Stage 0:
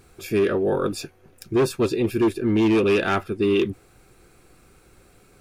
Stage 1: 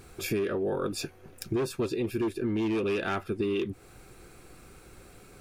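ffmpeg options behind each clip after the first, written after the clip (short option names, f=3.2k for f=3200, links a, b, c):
-af "acompressor=threshold=-30dB:ratio=6,volume=2.5dB"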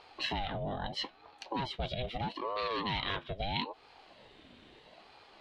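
-af "lowpass=f=3.4k:t=q:w=8.2,aeval=exprs='val(0)*sin(2*PI*540*n/s+540*0.55/0.77*sin(2*PI*0.77*n/s))':c=same,volume=-4.5dB"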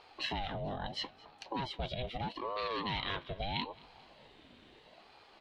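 -af "aecho=1:1:219|438|657|876:0.0708|0.0396|0.0222|0.0124,volume=-2dB"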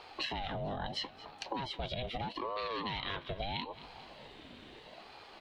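-filter_complex "[0:a]acrossover=split=440|1700[a][b][c];[a]asoftclip=type=hard:threshold=-39.5dB[d];[d][b][c]amix=inputs=3:normalize=0,acompressor=threshold=-41dB:ratio=6,volume=6.5dB"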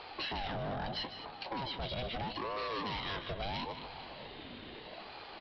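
-af "aresample=11025,asoftclip=type=tanh:threshold=-38.5dB,aresample=44100,aecho=1:1:152:0.299,volume=4.5dB"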